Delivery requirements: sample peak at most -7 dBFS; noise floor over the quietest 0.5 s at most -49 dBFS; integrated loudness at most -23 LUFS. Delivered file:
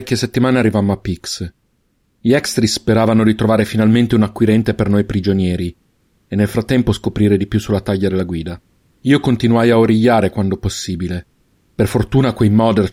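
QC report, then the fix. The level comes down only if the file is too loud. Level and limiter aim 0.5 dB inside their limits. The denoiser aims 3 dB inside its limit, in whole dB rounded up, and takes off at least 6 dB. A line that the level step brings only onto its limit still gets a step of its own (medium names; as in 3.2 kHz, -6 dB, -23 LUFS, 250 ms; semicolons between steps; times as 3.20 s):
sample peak -2.0 dBFS: fail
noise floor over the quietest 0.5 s -62 dBFS: pass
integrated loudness -15.5 LUFS: fail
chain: trim -8 dB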